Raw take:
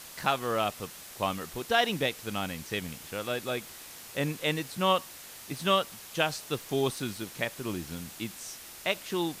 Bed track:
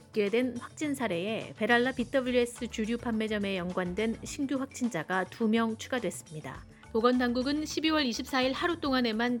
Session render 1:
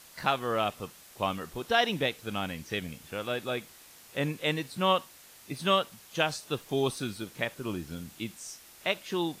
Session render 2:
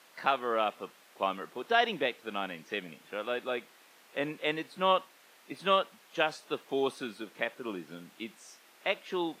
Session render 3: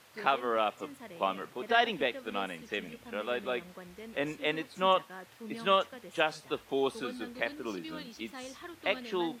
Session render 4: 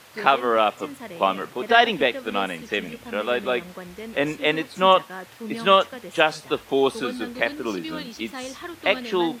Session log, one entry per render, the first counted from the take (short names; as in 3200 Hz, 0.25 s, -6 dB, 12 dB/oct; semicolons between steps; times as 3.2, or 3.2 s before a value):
noise print and reduce 7 dB
HPF 170 Hz 24 dB/oct; tone controls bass -9 dB, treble -12 dB
add bed track -16.5 dB
gain +10 dB